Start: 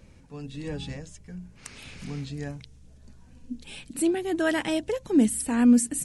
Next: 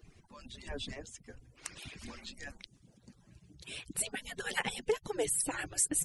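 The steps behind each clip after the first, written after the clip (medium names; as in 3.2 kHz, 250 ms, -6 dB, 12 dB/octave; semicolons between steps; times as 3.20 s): harmonic-percussive separation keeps percussive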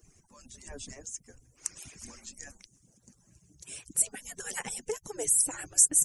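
resonant high shelf 5 kHz +9 dB, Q 3; trim -3.5 dB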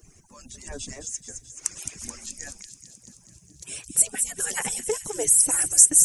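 feedback echo behind a high-pass 215 ms, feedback 65%, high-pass 4.3 kHz, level -6 dB; trim +7 dB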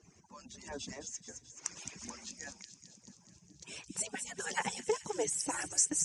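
cabinet simulation 100–6200 Hz, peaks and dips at 120 Hz -4 dB, 190 Hz +3 dB, 930 Hz +7 dB; trim -5 dB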